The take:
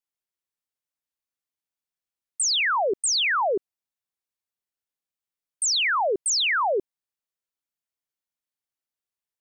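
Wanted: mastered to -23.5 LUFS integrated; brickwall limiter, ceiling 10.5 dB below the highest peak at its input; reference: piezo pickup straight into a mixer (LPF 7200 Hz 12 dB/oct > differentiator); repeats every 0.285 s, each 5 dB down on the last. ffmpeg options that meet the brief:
-af "alimiter=level_in=6dB:limit=-24dB:level=0:latency=1,volume=-6dB,lowpass=7.2k,aderivative,aecho=1:1:285|570|855|1140|1425|1710|1995:0.562|0.315|0.176|0.0988|0.0553|0.031|0.0173,volume=15.5dB"

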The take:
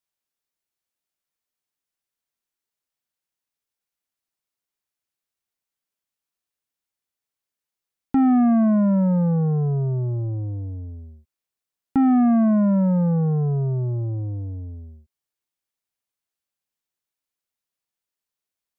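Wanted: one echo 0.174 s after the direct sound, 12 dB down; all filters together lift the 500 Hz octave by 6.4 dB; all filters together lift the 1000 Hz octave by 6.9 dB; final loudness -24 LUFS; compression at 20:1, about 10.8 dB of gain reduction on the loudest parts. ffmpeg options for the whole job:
-af "equalizer=f=500:t=o:g=5.5,equalizer=f=1k:t=o:g=7.5,acompressor=threshold=-23dB:ratio=20,aecho=1:1:174:0.251,volume=3dB"

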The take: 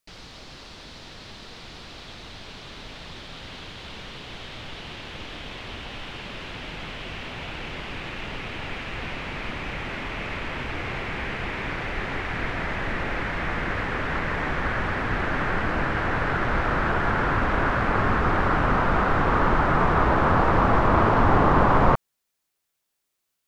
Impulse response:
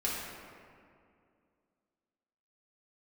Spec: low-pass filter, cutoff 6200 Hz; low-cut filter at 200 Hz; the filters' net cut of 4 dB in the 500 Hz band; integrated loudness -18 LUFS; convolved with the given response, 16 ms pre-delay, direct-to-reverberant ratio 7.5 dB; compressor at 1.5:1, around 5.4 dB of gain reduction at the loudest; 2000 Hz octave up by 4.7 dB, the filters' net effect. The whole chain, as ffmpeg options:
-filter_complex "[0:a]highpass=200,lowpass=6.2k,equalizer=f=500:t=o:g=-5.5,equalizer=f=2k:t=o:g=6.5,acompressor=threshold=-32dB:ratio=1.5,asplit=2[a][b];[1:a]atrim=start_sample=2205,adelay=16[c];[b][c]afir=irnorm=-1:irlink=0,volume=-14dB[d];[a][d]amix=inputs=2:normalize=0,volume=10dB"

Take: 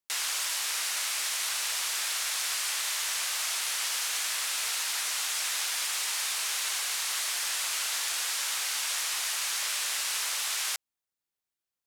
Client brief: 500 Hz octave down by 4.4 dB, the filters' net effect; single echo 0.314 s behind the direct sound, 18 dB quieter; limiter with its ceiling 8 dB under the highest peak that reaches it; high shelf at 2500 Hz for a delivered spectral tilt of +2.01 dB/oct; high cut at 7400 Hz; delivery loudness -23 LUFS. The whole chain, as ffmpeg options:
-af "lowpass=7.4k,equalizer=f=500:t=o:g=-6.5,highshelf=f=2.5k:g=5.5,alimiter=limit=-23dB:level=0:latency=1,aecho=1:1:314:0.126,volume=7dB"

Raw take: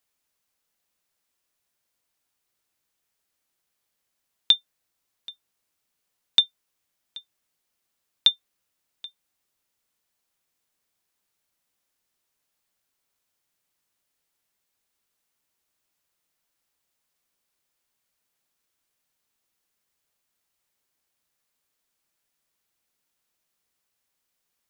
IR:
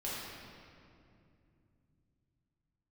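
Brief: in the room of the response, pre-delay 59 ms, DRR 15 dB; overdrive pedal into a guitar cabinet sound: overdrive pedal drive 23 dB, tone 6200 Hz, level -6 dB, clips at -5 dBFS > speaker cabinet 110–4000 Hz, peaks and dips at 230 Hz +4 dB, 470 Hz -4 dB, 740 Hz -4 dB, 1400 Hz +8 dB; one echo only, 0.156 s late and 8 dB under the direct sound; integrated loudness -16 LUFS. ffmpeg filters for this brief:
-filter_complex "[0:a]aecho=1:1:156:0.398,asplit=2[a][b];[1:a]atrim=start_sample=2205,adelay=59[c];[b][c]afir=irnorm=-1:irlink=0,volume=-18.5dB[d];[a][d]amix=inputs=2:normalize=0,asplit=2[e][f];[f]highpass=f=720:p=1,volume=23dB,asoftclip=type=tanh:threshold=-5dB[g];[e][g]amix=inputs=2:normalize=0,lowpass=f=6.2k:p=1,volume=-6dB,highpass=110,equalizer=f=230:t=q:w=4:g=4,equalizer=f=470:t=q:w=4:g=-4,equalizer=f=740:t=q:w=4:g=-4,equalizer=f=1.4k:t=q:w=4:g=8,lowpass=f=4k:w=0.5412,lowpass=f=4k:w=1.3066,volume=5.5dB"

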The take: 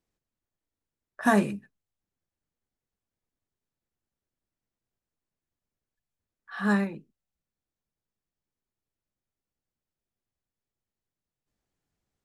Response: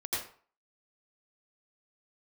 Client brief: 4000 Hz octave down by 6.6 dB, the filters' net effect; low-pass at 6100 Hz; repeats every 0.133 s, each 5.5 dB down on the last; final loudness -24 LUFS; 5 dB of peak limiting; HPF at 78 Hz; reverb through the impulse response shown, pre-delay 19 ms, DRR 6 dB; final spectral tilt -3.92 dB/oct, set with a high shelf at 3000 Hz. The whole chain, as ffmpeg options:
-filter_complex "[0:a]highpass=78,lowpass=6.1k,highshelf=f=3k:g=-6.5,equalizer=f=4k:t=o:g=-3,alimiter=limit=-15.5dB:level=0:latency=1,aecho=1:1:133|266|399|532|665|798|931:0.531|0.281|0.149|0.079|0.0419|0.0222|0.0118,asplit=2[a][b];[1:a]atrim=start_sample=2205,adelay=19[c];[b][c]afir=irnorm=-1:irlink=0,volume=-10.5dB[d];[a][d]amix=inputs=2:normalize=0,volume=3.5dB"

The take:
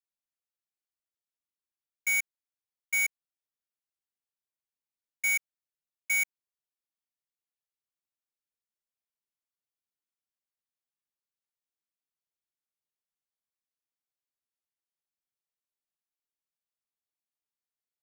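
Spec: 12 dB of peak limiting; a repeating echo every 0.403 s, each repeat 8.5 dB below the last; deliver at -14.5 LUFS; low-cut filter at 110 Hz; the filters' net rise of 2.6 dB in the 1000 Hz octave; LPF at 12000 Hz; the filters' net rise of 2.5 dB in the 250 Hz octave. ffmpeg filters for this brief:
-af "highpass=110,lowpass=12k,equalizer=f=250:t=o:g=4.5,equalizer=f=1k:t=o:g=3,alimiter=level_in=11.5dB:limit=-24dB:level=0:latency=1,volume=-11.5dB,aecho=1:1:403|806|1209|1612:0.376|0.143|0.0543|0.0206,volume=28.5dB"

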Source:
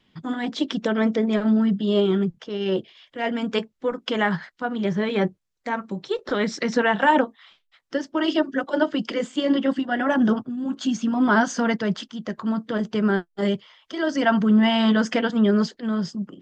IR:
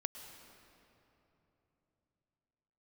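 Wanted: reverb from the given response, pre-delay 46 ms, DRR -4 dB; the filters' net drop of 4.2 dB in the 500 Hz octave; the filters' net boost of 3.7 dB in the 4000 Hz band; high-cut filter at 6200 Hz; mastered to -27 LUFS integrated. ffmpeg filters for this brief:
-filter_complex "[0:a]lowpass=6.2k,equalizer=f=500:t=o:g=-5.5,equalizer=f=4k:t=o:g=6,asplit=2[a][b];[1:a]atrim=start_sample=2205,adelay=46[c];[b][c]afir=irnorm=-1:irlink=0,volume=5dB[d];[a][d]amix=inputs=2:normalize=0,volume=-8.5dB"

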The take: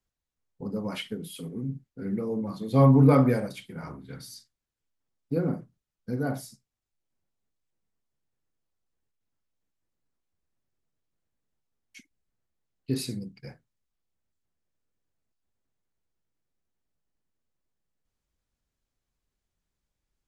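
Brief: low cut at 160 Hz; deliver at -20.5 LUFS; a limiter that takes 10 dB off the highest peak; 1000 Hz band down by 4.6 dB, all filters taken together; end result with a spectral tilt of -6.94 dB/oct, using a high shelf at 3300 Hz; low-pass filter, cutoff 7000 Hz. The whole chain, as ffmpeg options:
-af "highpass=160,lowpass=7k,equalizer=f=1k:t=o:g=-5.5,highshelf=f=3.3k:g=-4,volume=13dB,alimiter=limit=-7dB:level=0:latency=1"

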